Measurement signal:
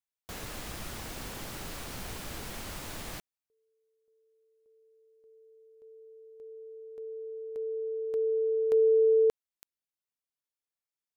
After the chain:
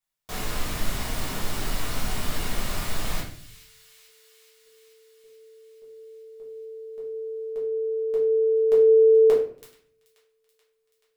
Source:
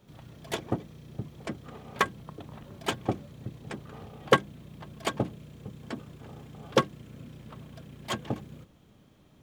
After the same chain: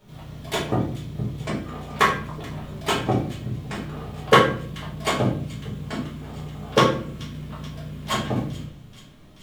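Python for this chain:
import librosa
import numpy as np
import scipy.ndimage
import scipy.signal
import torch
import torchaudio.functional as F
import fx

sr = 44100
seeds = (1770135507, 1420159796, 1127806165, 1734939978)

y = fx.peak_eq(x, sr, hz=380.0, db=-2.0, octaves=1.8)
y = fx.echo_wet_highpass(y, sr, ms=431, feedback_pct=68, hz=2500.0, wet_db=-16.5)
y = fx.room_shoebox(y, sr, seeds[0], volume_m3=66.0, walls='mixed', distance_m=1.4)
y = y * librosa.db_to_amplitude(2.5)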